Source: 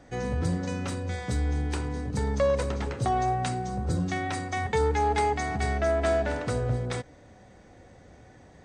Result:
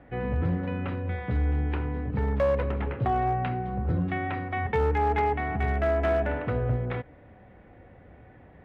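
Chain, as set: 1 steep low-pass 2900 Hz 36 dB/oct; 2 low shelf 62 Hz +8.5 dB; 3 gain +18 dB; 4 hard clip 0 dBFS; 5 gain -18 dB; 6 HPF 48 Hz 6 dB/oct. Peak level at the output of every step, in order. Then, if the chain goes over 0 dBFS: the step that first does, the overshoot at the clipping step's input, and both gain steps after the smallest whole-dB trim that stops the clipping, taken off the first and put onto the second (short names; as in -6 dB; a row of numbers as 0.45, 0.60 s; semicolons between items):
-15.0, -14.0, +4.0, 0.0, -18.0, -16.0 dBFS; step 3, 4.0 dB; step 3 +14 dB, step 5 -14 dB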